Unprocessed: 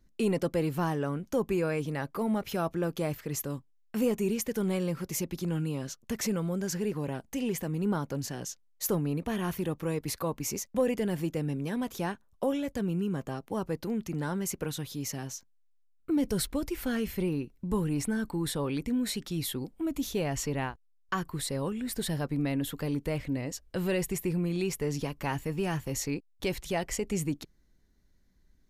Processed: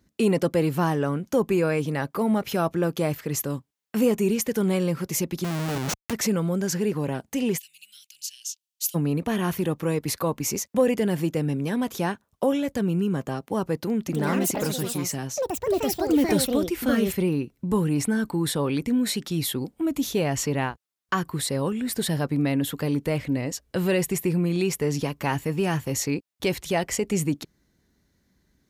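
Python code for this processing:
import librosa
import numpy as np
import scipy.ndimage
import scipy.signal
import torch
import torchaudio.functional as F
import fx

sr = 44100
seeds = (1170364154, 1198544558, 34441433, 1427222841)

y = fx.schmitt(x, sr, flips_db=-41.5, at=(5.44, 6.13))
y = fx.ellip_highpass(y, sr, hz=2700.0, order=4, stop_db=60, at=(7.57, 8.94), fade=0.02)
y = fx.echo_pitch(y, sr, ms=105, semitones=5, count=2, db_per_echo=-3.0, at=(13.98, 18.04))
y = scipy.signal.sosfilt(scipy.signal.butter(2, 82.0, 'highpass', fs=sr, output='sos'), y)
y = y * librosa.db_to_amplitude(6.5)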